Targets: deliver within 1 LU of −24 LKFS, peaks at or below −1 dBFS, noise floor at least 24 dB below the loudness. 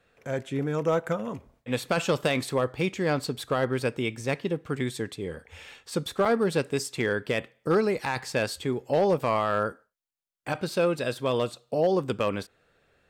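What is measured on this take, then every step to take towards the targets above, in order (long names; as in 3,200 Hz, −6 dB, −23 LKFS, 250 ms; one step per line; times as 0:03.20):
share of clipped samples 0.3%; peaks flattened at −16.0 dBFS; number of dropouts 1; longest dropout 4.9 ms; integrated loudness −28.0 LKFS; sample peak −16.0 dBFS; target loudness −24.0 LKFS
→ clipped peaks rebuilt −16 dBFS
repair the gap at 0:06.25, 4.9 ms
level +4 dB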